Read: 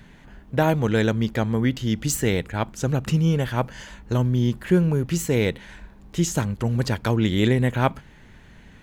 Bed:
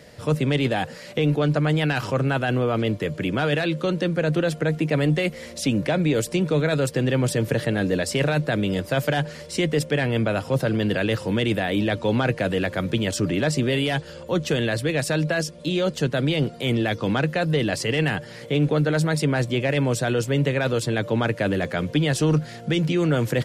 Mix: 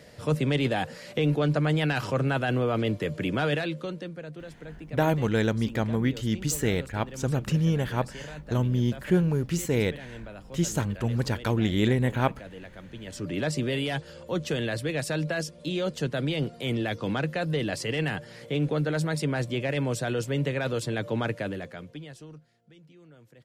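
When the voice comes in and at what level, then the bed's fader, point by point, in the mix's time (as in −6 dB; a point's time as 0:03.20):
4.40 s, −4.0 dB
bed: 0:03.49 −3.5 dB
0:04.37 −20 dB
0:12.94 −20 dB
0:13.39 −6 dB
0:21.31 −6 dB
0:22.60 −32.5 dB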